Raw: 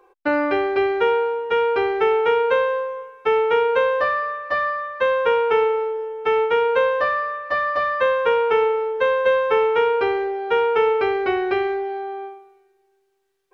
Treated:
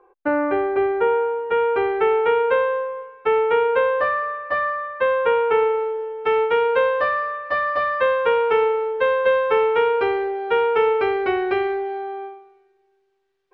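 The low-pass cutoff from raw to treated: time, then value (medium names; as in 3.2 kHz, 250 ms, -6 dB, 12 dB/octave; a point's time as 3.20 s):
0.99 s 1.6 kHz
2.06 s 2.8 kHz
5.61 s 2.8 kHz
6.01 s 4.3 kHz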